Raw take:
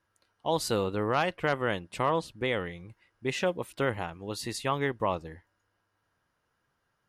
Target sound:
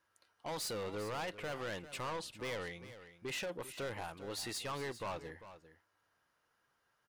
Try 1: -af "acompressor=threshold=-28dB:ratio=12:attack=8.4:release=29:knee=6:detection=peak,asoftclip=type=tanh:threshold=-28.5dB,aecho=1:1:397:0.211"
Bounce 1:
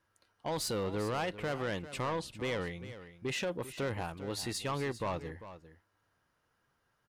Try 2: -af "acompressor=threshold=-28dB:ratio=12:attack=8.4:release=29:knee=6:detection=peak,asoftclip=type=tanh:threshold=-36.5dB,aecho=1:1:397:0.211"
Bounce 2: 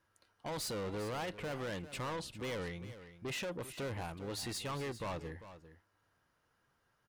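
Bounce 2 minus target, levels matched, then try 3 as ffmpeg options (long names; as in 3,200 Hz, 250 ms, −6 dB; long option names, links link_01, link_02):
250 Hz band +3.5 dB
-af "acompressor=threshold=-28dB:ratio=12:attack=8.4:release=29:knee=6:detection=peak,lowshelf=frequency=290:gain=-11,asoftclip=type=tanh:threshold=-36.5dB,aecho=1:1:397:0.211"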